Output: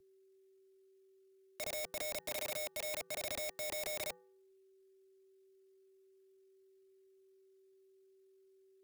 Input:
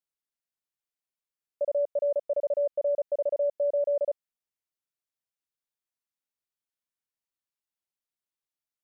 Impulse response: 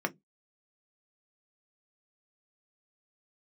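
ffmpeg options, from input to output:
-af "asoftclip=type=hard:threshold=-30dB,aeval=exprs='val(0)+0.000447*sin(2*PI*410*n/s)':c=same,equalizer=f=315:t=o:w=0.33:g=-10,equalizer=f=500:t=o:w=0.33:g=-11,equalizer=f=800:t=o:w=0.33:g=-9,asetrate=60591,aresample=44100,atempo=0.727827,aeval=exprs='(mod(126*val(0)+1,2)-1)/126':c=same,bandreject=f=337.5:t=h:w=4,bandreject=f=675:t=h:w=4,bandreject=f=1.0125k:t=h:w=4,bandreject=f=1.35k:t=h:w=4,bandreject=f=1.6875k:t=h:w=4,bandreject=f=2.025k:t=h:w=4,afreqshift=-180,volume=7.5dB"

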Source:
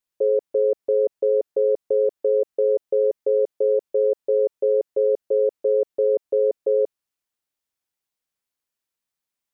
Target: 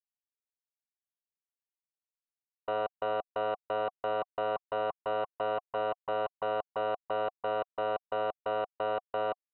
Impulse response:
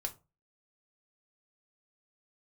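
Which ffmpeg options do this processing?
-filter_complex "[0:a]areverse,aeval=exprs='0.251*(cos(1*acos(clip(val(0)/0.251,-1,1)))-cos(1*PI/2))+0.0891*(cos(3*acos(clip(val(0)/0.251,-1,1)))-cos(3*PI/2))+0.1*(cos(4*acos(clip(val(0)/0.251,-1,1)))-cos(4*PI/2))+0.0282*(cos(8*acos(clip(val(0)/0.251,-1,1)))-cos(8*PI/2))':c=same,asplit=3[a][b][c];[a]bandpass=f=730:t=q:w=8,volume=0dB[d];[b]bandpass=f=1.09k:t=q:w=8,volume=-6dB[e];[c]bandpass=f=2.44k:t=q:w=8,volume=-9dB[f];[d][e][f]amix=inputs=3:normalize=0,volume=1.5dB"

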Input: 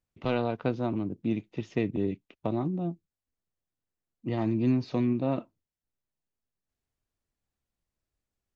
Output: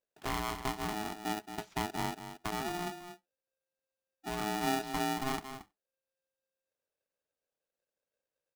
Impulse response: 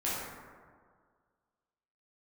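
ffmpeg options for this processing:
-filter_complex "[0:a]aecho=1:1:226:0.316,asplit=2[a][b];[1:a]atrim=start_sample=2205,atrim=end_sample=4410[c];[b][c]afir=irnorm=-1:irlink=0,volume=-27.5dB[d];[a][d]amix=inputs=2:normalize=0,aeval=exprs='val(0)*sgn(sin(2*PI*530*n/s))':c=same,volume=-7.5dB"

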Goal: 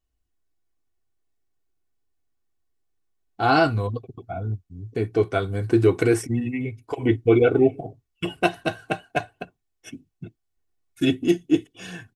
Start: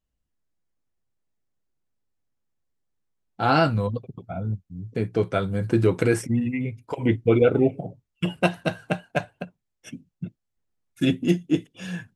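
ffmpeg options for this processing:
-af "aecho=1:1:2.7:0.62"

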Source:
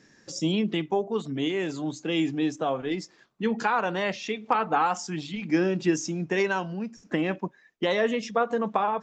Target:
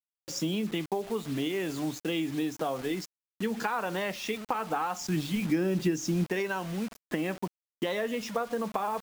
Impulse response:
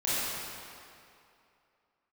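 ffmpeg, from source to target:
-filter_complex "[0:a]acrusher=bits=6:mix=0:aa=0.000001,acompressor=threshold=-27dB:ratio=6,asettb=1/sr,asplit=3[a][b][c];[a]atrim=end=5.004[d];[b]atrim=start=5:end=6.24,asetpts=PTS-STARTPTS,afade=t=in:d=0.004:c=qsin,afade=t=out:st=1.236:d=0.004:c=qsin,lowshelf=f=320:g=6.5[e];[c]atrim=start=6.236[f];[d][e]acrossfade=d=0.004:c1=hsin:c2=qsin[g];[g][f]acrossfade=d=0.004:c1=qsin:c2=hsin"

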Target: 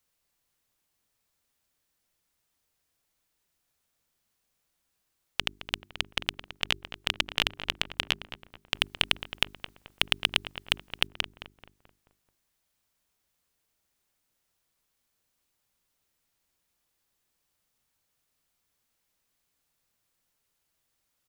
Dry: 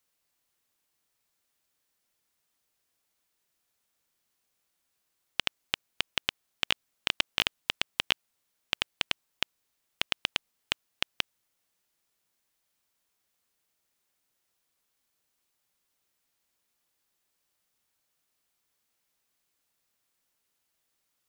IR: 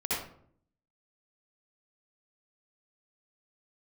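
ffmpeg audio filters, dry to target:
-filter_complex "[0:a]asettb=1/sr,asplit=3[a][b][c];[a]atrim=end=8.744[d];[b]atrim=start=8.74:end=11.07,asetpts=PTS-STARTPTS,afade=t=in:d=0.004:c=qsin,afade=t=out:st=2.326:d=0.004:c=qsin,acontrast=89[e];[c]atrim=start=11.066[f];[d][e]acrossfade=d=0.004:c1=hsin:c2=qsin[g];[g][f]acrossfade=d=0.004:c1=qsin:c2=hsin,lowshelf=f=150:g=9.5,bandreject=f=50:t=h:w=6,bandreject=f=100:t=h:w=6,bandreject=f=150:t=h:w=6,bandreject=f=200:t=h:w=6,bandreject=f=250:t=h:w=6,bandreject=f=300:t=h:w=6,bandreject=f=350:t=h:w=6,bandreject=f=400:t=h:w=6,asplit=2[h][i];[i]adelay=217,lowpass=f=1.8k:p=1,volume=-9.5dB,asplit=2[j][k];[k]adelay=217,lowpass=f=1.8k:p=1,volume=0.49,asplit=2[l][m];[m]adelay=217,lowpass=f=1.8k:p=1,volume=0.49,asplit=2[n][o];[o]adelay=217,lowpass=f=1.8k:p=1,volume=0.49,asplit=2[p][q];[q]adelay=217,lowpass=f=1.8k:p=1,volume=0.49[r];[h][j][l][n][p][r]amix=inputs=6:normalize=0"

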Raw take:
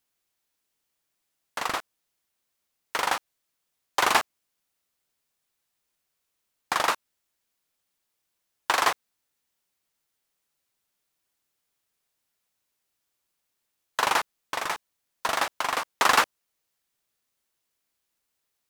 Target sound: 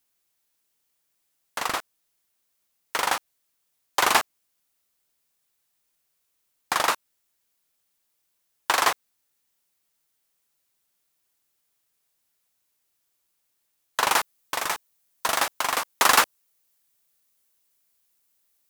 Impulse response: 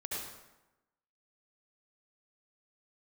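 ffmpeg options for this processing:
-af "asetnsamples=n=441:p=0,asendcmd='14.11 highshelf g 11.5',highshelf=f=7.2k:g=6,volume=1dB"

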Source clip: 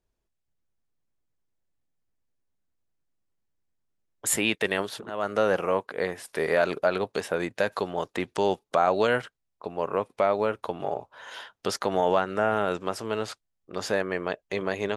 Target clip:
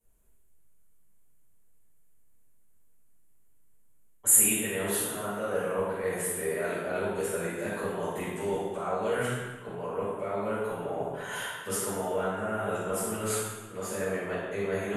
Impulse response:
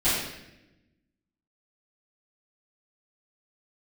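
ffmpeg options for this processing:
-filter_complex "[0:a]highshelf=f=5.3k:g=-11.5,bandreject=f=60:t=h:w=6,bandreject=f=120:t=h:w=6,bandreject=f=180:t=h:w=6,areverse,acompressor=threshold=-39dB:ratio=4,areverse,aexciter=amount=14:drive=7:freq=7.5k[a];[1:a]atrim=start_sample=2205,asetrate=28224,aresample=44100[b];[a][b]afir=irnorm=-1:irlink=0,volume=-9dB"

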